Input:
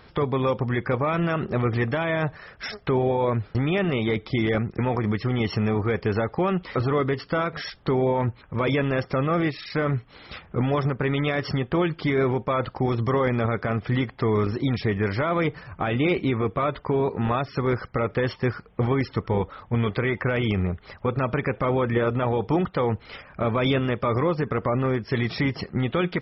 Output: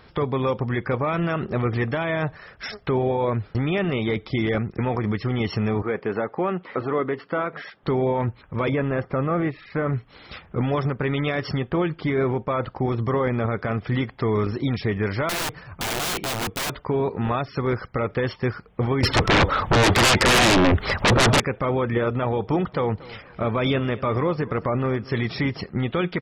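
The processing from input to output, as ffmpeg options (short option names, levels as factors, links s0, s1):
-filter_complex "[0:a]asettb=1/sr,asplit=3[s0][s1][s2];[s0]atrim=end=5.824[s3];[s1]atrim=start=5.82:end=7.83,asetpts=PTS-STARTPTS,afade=t=in:d=0.004:c=qsin,afade=t=out:st=2.006:d=0.004:c=qsin,highpass=210,lowpass=2300[s4];[s2]atrim=start=7.826[s5];[s3][s4]acrossfade=d=0.004:c1=hsin:c2=qsin[s6];[s6][s5]acrossfade=d=0.004:c1=qsin:c2=hsin,asettb=1/sr,asplit=3[s7][s8][s9];[s7]atrim=end=8.694[s10];[s8]atrim=start=8.69:end=9.93,asetpts=PTS-STARTPTS,afade=t=in:d=0.004:c=qsin,afade=t=out:st=1.236:d=0.004:c=qsin,lowpass=1900[s11];[s9]atrim=start=9.926[s12];[s10][s11]acrossfade=d=0.004:c1=hsin:c2=qsin[s13];[s13][s12]acrossfade=d=0.004:c1=qsin:c2=hsin,asettb=1/sr,asplit=3[s14][s15][s16];[s14]atrim=end=11.704[s17];[s15]atrim=start=11.7:end=13.59,asetpts=PTS-STARTPTS,afade=t=in:d=0.004:c=qsin,afade=t=out:st=1.886:d=0.004:c=qsin,lowpass=f=2800:p=1[s18];[s16]atrim=start=13.586[s19];[s17][s18]acrossfade=d=0.004:c1=hsin:c2=qsin[s20];[s20][s19]acrossfade=d=0.004:c1=qsin:c2=hsin,asettb=1/sr,asplit=3[s21][s22][s23];[s21]atrim=end=15.294[s24];[s22]atrim=start=15.29:end=16.7,asetpts=PTS-STARTPTS,afade=t=in:d=0.004:c=qsin,afade=t=out:st=1.406:d=0.004:c=qsin,aeval=exprs='(mod(11.9*val(0)+1,2)-1)/11.9':c=same[s25];[s23]atrim=start=16.696[s26];[s24][s25]acrossfade=d=0.004:c1=hsin:c2=qsin[s27];[s27][s26]acrossfade=d=0.004:c1=qsin:c2=hsin,asettb=1/sr,asplit=3[s28][s29][s30];[s28]atrim=end=19.034[s31];[s29]atrim=start=19.03:end=21.4,asetpts=PTS-STARTPTS,afade=t=in:d=0.004:c=qsin,afade=t=out:st=2.366:d=0.004:c=qsin,aeval=exprs='0.224*sin(PI/2*6.31*val(0)/0.224)':c=same[s32];[s30]atrim=start=21.396[s33];[s31][s32]acrossfade=d=0.004:c1=hsin:c2=qsin[s34];[s34][s33]acrossfade=d=0.004:c1=qsin:c2=hsin,asplit=3[s35][s36][s37];[s35]afade=t=out:st=22.47:d=0.02[s38];[s36]aecho=1:1:234|468|702:0.106|0.0339|0.0108,afade=t=in:st=22.47:d=0.02,afade=t=out:st=25.57:d=0.02[s39];[s37]afade=t=in:st=25.57:d=0.02[s40];[s38][s39][s40]amix=inputs=3:normalize=0"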